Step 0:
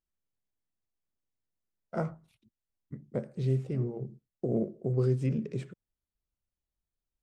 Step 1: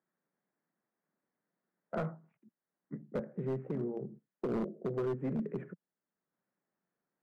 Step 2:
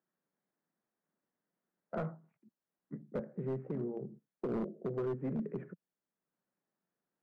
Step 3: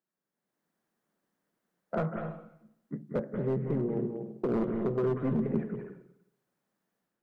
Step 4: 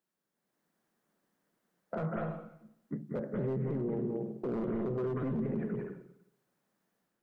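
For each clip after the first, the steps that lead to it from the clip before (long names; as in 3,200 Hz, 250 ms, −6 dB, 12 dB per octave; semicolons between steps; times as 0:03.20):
elliptic band-pass filter 170–1,800 Hz, stop band 40 dB; gain into a clipping stage and back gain 29 dB; multiband upward and downward compressor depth 40%
high-shelf EQ 2,900 Hz −7 dB; level −1.5 dB
automatic gain control gain up to 10 dB; convolution reverb, pre-delay 182 ms, DRR 4.5 dB; level −3.5 dB
brickwall limiter −29 dBFS, peak gain reduction 11 dB; level +2.5 dB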